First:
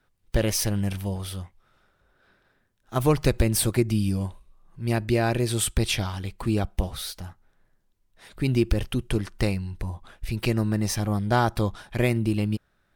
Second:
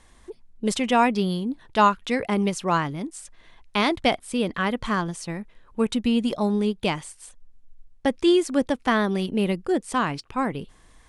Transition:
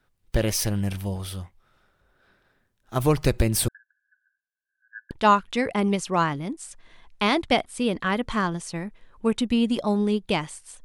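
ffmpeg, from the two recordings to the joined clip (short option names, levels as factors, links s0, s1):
-filter_complex "[0:a]asettb=1/sr,asplit=3[s0][s1][s2];[s0]atrim=end=3.684[s3];[s1]atrim=start=3.68:end=5.11,asetpts=PTS-STARTPTS,afade=t=in:d=0.004:c=qsin,afade=t=out:st=1.426:d=0.004:c=qsin,asuperpass=centerf=1600:order=12:qfactor=7.2[s4];[s2]atrim=start=5.106[s5];[s3][s4]acrossfade=d=0.004:c1=hsin:c2=qsin[s6];[s6][s5]acrossfade=d=0.004:c1=qsin:c2=hsin,apad=whole_dur=10.84,atrim=end=10.84,atrim=end=5.112[s7];[1:a]atrim=start=1.648:end=7.38[s8];[s7][s8]acrossfade=d=0.004:c1=hsin:c2=hsin"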